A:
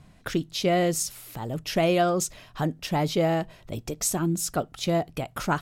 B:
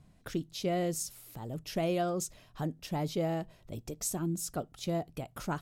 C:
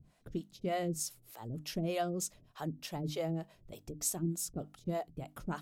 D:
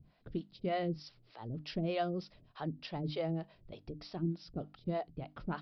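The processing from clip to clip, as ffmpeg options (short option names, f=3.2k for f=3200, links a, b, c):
-af "equalizer=f=1.9k:w=0.44:g=-5.5,volume=-7dB"
-filter_complex "[0:a]acrossover=split=430[a][b];[a]aeval=exprs='val(0)*(1-1/2+1/2*cos(2*PI*3.3*n/s))':c=same[c];[b]aeval=exprs='val(0)*(1-1/2-1/2*cos(2*PI*3.3*n/s))':c=same[d];[c][d]amix=inputs=2:normalize=0,bandreject=f=50:t=h:w=6,bandreject=f=100:t=h:w=6,bandreject=f=150:t=h:w=6,bandreject=f=200:t=h:w=6,bandreject=f=250:t=h:w=6,bandreject=f=300:t=h:w=6,volume=1.5dB"
-af "aresample=11025,aresample=44100"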